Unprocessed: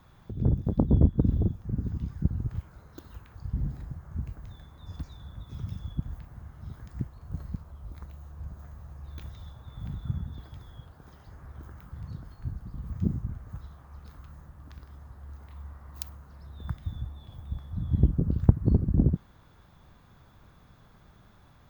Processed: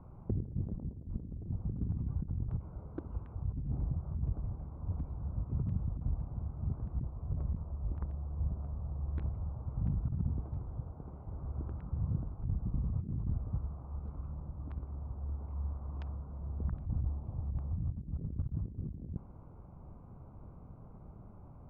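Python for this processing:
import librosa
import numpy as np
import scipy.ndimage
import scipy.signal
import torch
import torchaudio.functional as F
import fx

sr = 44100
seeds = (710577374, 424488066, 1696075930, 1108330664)

y = fx.wiener(x, sr, points=25)
y = scipy.signal.sosfilt(scipy.signal.bessel(4, 1400.0, 'lowpass', norm='mag', fs=sr, output='sos'), y)
y = fx.over_compress(y, sr, threshold_db=-36.0, ratio=-1.0)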